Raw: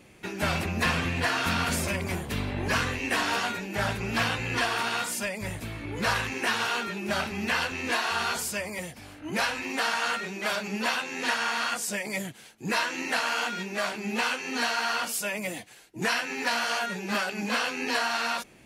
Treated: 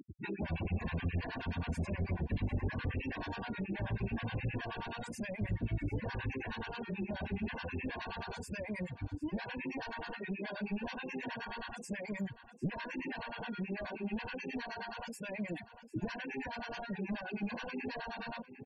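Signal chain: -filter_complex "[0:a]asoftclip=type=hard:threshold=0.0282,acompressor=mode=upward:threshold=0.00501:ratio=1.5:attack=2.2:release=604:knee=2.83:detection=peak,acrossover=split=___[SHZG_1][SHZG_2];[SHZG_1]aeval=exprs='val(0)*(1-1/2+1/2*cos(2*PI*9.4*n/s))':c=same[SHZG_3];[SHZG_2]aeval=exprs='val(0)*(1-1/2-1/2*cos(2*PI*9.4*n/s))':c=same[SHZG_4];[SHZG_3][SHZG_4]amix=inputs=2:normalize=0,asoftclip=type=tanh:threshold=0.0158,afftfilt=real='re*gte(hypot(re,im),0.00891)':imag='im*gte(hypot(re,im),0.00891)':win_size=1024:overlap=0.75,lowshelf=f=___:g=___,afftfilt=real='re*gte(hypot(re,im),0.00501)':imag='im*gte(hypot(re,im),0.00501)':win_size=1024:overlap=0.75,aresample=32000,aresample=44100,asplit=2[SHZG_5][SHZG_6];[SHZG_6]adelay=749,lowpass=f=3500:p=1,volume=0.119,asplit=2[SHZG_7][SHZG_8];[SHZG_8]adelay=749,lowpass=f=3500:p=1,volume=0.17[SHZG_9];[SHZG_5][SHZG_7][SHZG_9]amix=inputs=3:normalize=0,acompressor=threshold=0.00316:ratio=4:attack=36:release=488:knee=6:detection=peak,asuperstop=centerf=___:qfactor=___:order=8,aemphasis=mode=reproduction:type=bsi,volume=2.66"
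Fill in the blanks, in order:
820, 65, -6, 1300, 4.9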